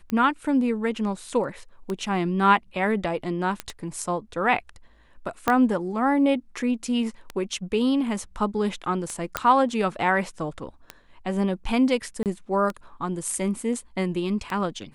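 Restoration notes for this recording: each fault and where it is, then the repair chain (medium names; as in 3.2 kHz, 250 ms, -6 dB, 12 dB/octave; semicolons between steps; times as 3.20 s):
tick 33 1/3 rpm -16 dBFS
3.60 s: pop -13 dBFS
5.48 s: pop -7 dBFS
9.37 s: pop -7 dBFS
12.23–12.26 s: dropout 28 ms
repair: de-click; interpolate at 12.23 s, 28 ms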